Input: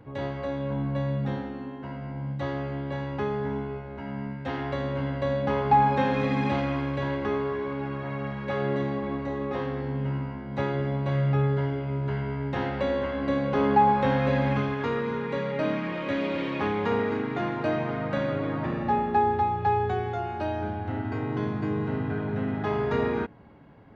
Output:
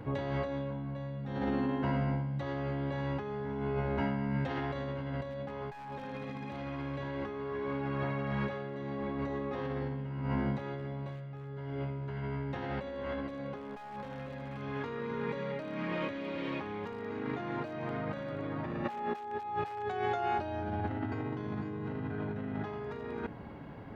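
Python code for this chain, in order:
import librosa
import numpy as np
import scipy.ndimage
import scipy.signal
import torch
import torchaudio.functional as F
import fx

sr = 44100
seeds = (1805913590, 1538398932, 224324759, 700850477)

y = np.minimum(x, 2.0 * 10.0 ** (-18.5 / 20.0) - x)
y = fx.highpass(y, sr, hz=520.0, slope=6, at=(18.84, 20.39))
y = fx.over_compress(y, sr, threshold_db=-36.0, ratio=-1.0)
y = y * librosa.db_to_amplitude(-1.0)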